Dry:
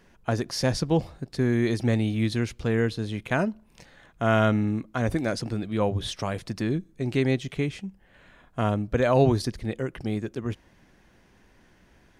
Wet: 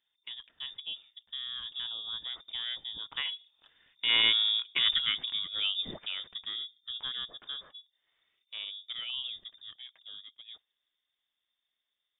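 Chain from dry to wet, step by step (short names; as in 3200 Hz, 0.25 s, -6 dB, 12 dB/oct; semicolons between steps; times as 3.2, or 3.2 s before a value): Doppler pass-by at 4.73, 15 m/s, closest 8.6 m; dynamic EQ 280 Hz, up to -4 dB, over -37 dBFS, Q 0.78; inverted band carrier 3600 Hz; gate -55 dBFS, range -7 dB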